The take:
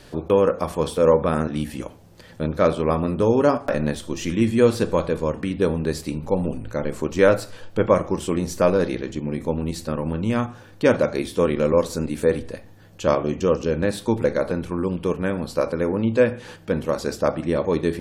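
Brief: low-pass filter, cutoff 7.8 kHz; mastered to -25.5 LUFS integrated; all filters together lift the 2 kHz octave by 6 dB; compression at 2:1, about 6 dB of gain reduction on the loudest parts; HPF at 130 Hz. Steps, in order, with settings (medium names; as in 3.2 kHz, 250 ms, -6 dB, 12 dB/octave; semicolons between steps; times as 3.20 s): high-pass 130 Hz; low-pass 7.8 kHz; peaking EQ 2 kHz +8 dB; compression 2:1, threshold -21 dBFS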